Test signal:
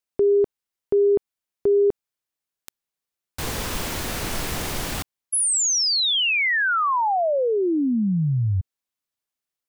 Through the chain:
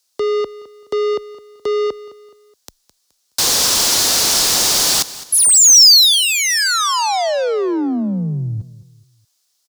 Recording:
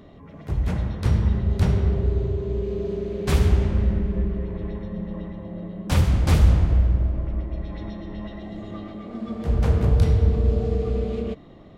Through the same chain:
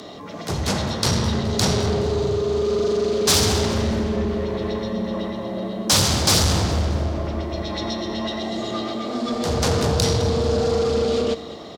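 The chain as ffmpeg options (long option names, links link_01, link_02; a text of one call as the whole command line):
ffmpeg -i in.wav -filter_complex "[0:a]asplit=2[link_01][link_02];[link_02]highpass=frequency=720:poles=1,volume=29dB,asoftclip=type=tanh:threshold=-5dB[link_03];[link_01][link_03]amix=inputs=2:normalize=0,lowpass=frequency=3000:poles=1,volume=-6dB,afreqshift=15,highshelf=frequency=3400:width_type=q:width=1.5:gain=13.5,asplit=2[link_04][link_05];[link_05]aecho=0:1:211|422|633:0.141|0.0537|0.0204[link_06];[link_04][link_06]amix=inputs=2:normalize=0,volume=-6dB" out.wav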